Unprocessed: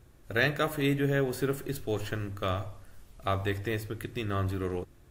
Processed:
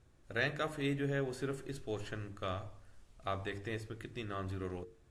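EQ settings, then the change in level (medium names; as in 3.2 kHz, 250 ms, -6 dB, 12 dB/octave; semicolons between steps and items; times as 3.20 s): low-pass 9.5 kHz 24 dB/octave; hum notches 50/100/150/200/250/300/350/400/450 Hz; -7.5 dB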